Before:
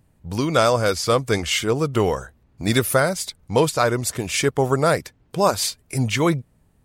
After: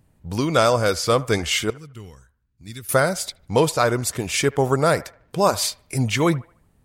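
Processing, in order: 1.7–2.89 passive tone stack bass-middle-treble 6-0-2; on a send: band-limited delay 75 ms, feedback 38%, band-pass 1100 Hz, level -18 dB

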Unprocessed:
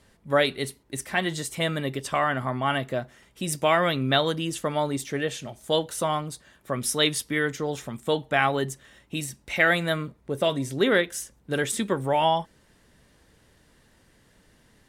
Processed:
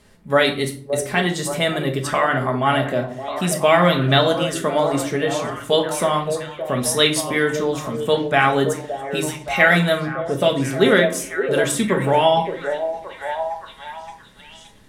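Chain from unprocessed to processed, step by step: on a send: delay with a stepping band-pass 0.571 s, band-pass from 490 Hz, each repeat 0.7 oct, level -5.5 dB; on the sum: shoebox room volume 470 m³, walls furnished, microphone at 1.4 m; gain +4.5 dB

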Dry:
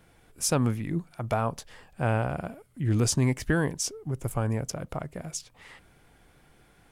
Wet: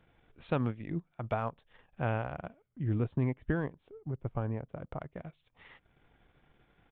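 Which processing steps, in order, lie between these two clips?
downsampling 8000 Hz; transient shaper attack +2 dB, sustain -11 dB; 2.68–5.01 high shelf 2100 Hz -10.5 dB; gain -6.5 dB

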